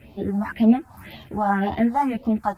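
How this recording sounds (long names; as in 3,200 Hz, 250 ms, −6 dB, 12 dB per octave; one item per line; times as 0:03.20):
phaser sweep stages 4, 1.9 Hz, lowest notch 420–1,600 Hz
a quantiser's noise floor 12 bits, dither none
a shimmering, thickened sound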